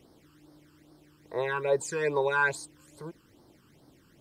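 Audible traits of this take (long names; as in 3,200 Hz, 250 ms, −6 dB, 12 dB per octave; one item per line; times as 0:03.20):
phaser sweep stages 12, 2.4 Hz, lowest notch 640–2,600 Hz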